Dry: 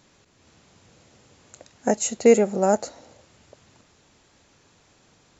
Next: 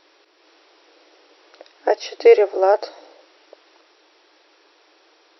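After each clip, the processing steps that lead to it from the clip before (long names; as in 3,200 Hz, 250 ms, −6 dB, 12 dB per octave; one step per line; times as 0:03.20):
brick-wall band-pass 300–5,800 Hz
level +5 dB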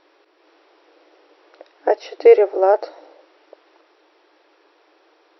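low-pass filter 1,600 Hz 6 dB per octave
level +1.5 dB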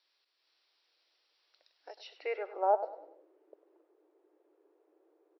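dynamic equaliser 1,900 Hz, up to −6 dB, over −41 dBFS, Q 1.9
band-pass filter sweep 4,500 Hz → 380 Hz, 0:01.93–0:03.10
repeating echo 99 ms, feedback 37%, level −14 dB
level −7 dB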